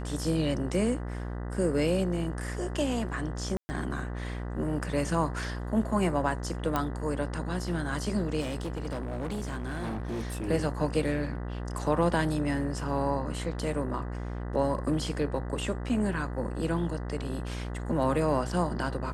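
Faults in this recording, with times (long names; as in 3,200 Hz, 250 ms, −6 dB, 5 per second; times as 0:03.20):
mains buzz 60 Hz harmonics 33 −35 dBFS
0:03.57–0:03.69: drop-out 120 ms
0:06.76: click −14 dBFS
0:08.40–0:10.49: clipping −30 dBFS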